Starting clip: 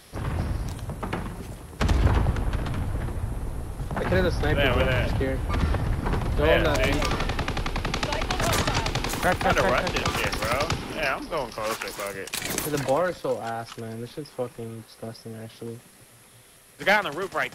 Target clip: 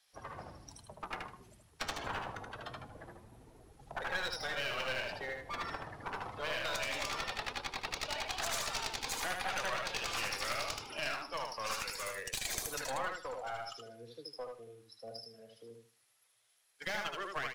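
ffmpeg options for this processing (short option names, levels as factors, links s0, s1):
-filter_complex "[0:a]aemphasis=mode=production:type=75fm,afftdn=nr=20:nf=-32,acrossover=split=550 7300:gain=0.112 1 0.0708[s0][s1][s2];[s0][s1][s2]amix=inputs=3:normalize=0,acrossover=split=190|6300[s3][s4][s5];[s4]alimiter=limit=0.168:level=0:latency=1:release=134[s6];[s3][s6][s5]amix=inputs=3:normalize=0,acrossover=split=100|820[s7][s8][s9];[s7]acompressor=threshold=0.00126:ratio=4[s10];[s8]acompressor=threshold=0.0126:ratio=4[s11];[s9]acompressor=threshold=0.0355:ratio=4[s12];[s10][s11][s12]amix=inputs=3:normalize=0,flanger=delay=1.2:depth=8.9:regen=76:speed=0.24:shape=sinusoidal,aeval=exprs='clip(val(0),-1,0.0106)':c=same,aecho=1:1:77|154|231:0.631|0.139|0.0305"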